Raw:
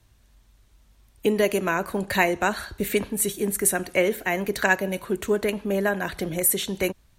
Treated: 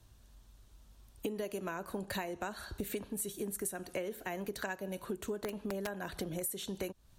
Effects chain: peaking EQ 2.1 kHz -7 dB 0.59 oct; compression 8:1, threshold -34 dBFS, peak gain reduction 17.5 dB; 5.32–5.94 s: integer overflow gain 27.5 dB; trim -1.5 dB

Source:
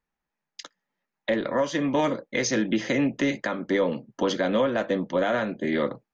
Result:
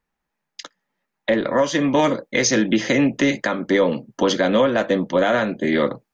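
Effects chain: treble shelf 4.2 kHz -2.5 dB, from 1.55 s +4 dB; trim +6 dB

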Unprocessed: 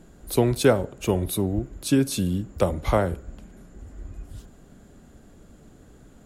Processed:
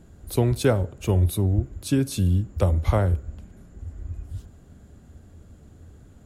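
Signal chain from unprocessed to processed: peaking EQ 84 Hz +15 dB 0.94 oct; trim -3.5 dB

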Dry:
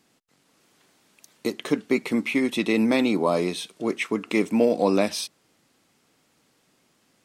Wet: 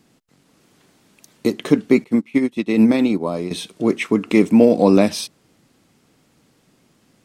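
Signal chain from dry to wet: bass shelf 340 Hz +10.5 dB; 2.04–3.51 s: upward expansion 2.5:1, over -27 dBFS; trim +3 dB

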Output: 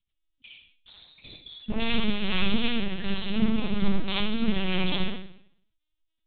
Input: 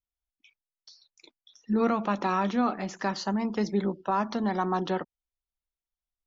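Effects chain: sine folder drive 13 dB, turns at -15 dBFS; high-order bell 840 Hz -15.5 dB 2.8 oct; modulation noise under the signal 16 dB; reverberation RT60 0.65 s, pre-delay 49 ms, DRR -2.5 dB; LPC vocoder at 8 kHz pitch kept; trim -4 dB

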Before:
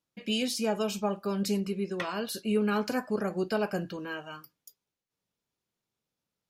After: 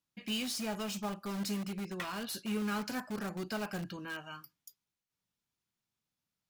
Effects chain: peaking EQ 470 Hz -9 dB 1.1 oct; in parallel at -8 dB: integer overflow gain 31.5 dB; on the sum: trim -4.5 dB

